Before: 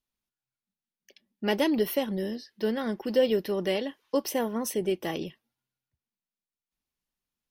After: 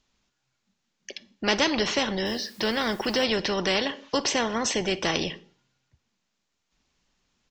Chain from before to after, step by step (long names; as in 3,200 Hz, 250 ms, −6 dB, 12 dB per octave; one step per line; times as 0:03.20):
downsampling to 16,000 Hz
0:02.26–0:03.24: bit-depth reduction 12 bits, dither triangular
on a send at −21.5 dB: convolution reverb RT60 0.45 s, pre-delay 39 ms
on the sum: every bin compressed towards the loudest bin 2 to 1
level +3 dB